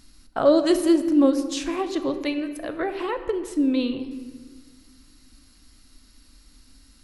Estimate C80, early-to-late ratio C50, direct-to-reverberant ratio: 12.0 dB, 10.5 dB, 8.5 dB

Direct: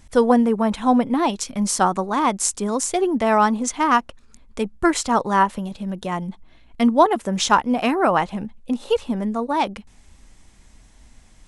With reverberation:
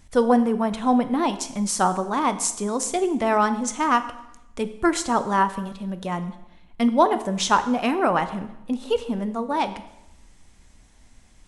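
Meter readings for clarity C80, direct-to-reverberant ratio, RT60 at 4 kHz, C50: 15.0 dB, 10.0 dB, 0.85 s, 13.0 dB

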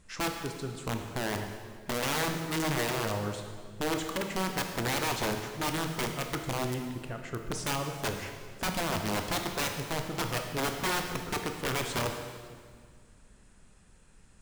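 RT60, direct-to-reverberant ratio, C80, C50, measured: 1.8 s, 4.0 dB, 7.0 dB, 5.5 dB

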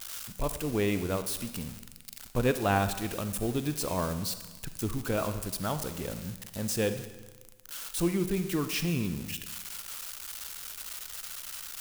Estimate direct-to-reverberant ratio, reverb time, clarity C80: 9.5 dB, 1.2 s, 12.5 dB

